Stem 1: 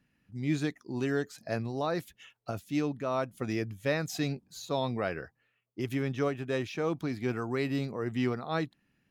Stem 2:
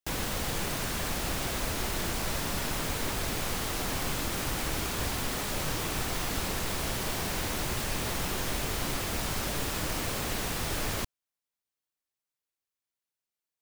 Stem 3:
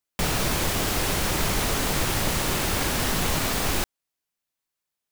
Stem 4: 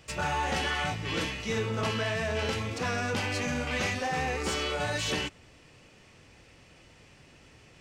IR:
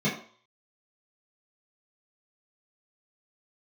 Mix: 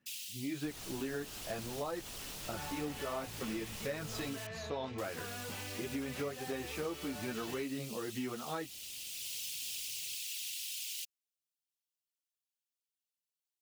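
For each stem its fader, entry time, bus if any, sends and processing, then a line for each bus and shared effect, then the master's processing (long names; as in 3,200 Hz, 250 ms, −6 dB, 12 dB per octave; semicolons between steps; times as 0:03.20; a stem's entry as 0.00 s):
+1.0 dB, 0.00 s, no send, high-pass filter 190 Hz 6 dB per octave; high-shelf EQ 6,700 Hz −10 dB; string-ensemble chorus
−3.0 dB, 0.00 s, muted 0:04.47–0:04.98, no send, elliptic high-pass filter 2,700 Hz, stop band 70 dB; random phases in short frames; automatic ducking −7 dB, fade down 0.40 s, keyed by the first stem
−14.5 dB, 0.45 s, no send, brickwall limiter −25.5 dBFS, peak gain reduction 13.5 dB
−11.0 dB, 2.35 s, no send, soft clipping −27.5 dBFS, distortion −14 dB; moving average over 4 samples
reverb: not used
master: downward compressor 4 to 1, threshold −36 dBFS, peak gain reduction 9.5 dB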